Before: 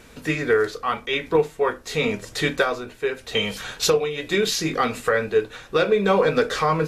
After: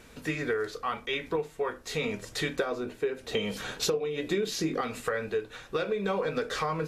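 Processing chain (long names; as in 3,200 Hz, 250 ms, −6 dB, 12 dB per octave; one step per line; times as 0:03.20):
0:02.59–0:04.81: parametric band 300 Hz +8.5 dB 2.3 octaves
downward compressor 4 to 1, threshold −22 dBFS, peak gain reduction 12 dB
level −5 dB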